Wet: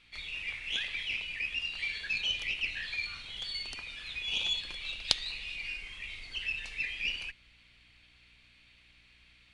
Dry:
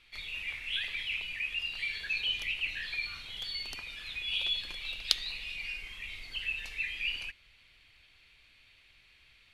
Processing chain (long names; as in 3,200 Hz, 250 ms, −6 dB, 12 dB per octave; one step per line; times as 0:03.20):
harmonic generator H 8 −21 dB, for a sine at −2 dBFS
downsampling to 22,050 Hz
mains hum 60 Hz, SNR 32 dB